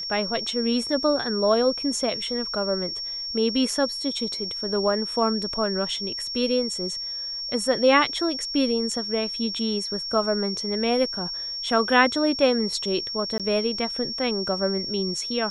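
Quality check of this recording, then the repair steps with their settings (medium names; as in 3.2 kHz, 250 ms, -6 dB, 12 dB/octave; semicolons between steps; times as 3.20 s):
whine 5.5 kHz -29 dBFS
13.38–13.40 s: dropout 17 ms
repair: band-stop 5.5 kHz, Q 30; interpolate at 13.38 s, 17 ms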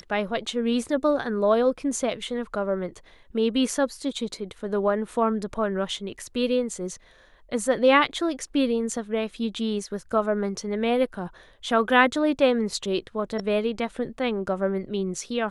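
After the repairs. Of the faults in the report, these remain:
nothing left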